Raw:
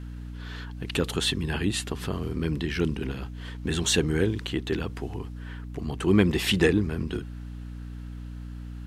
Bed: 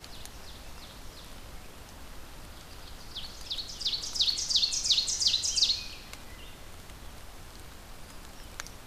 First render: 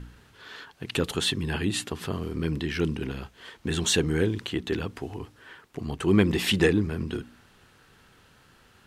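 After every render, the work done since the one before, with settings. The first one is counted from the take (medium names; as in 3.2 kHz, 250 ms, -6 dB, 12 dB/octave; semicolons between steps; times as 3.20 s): de-hum 60 Hz, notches 5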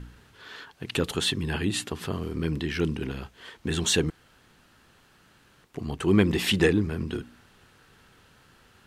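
4.10–5.64 s: room tone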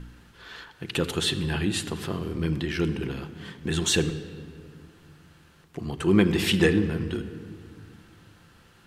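simulated room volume 4000 m³, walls mixed, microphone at 0.81 m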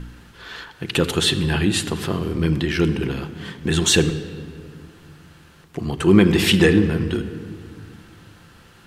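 trim +7 dB; peak limiter -2 dBFS, peak gain reduction 3 dB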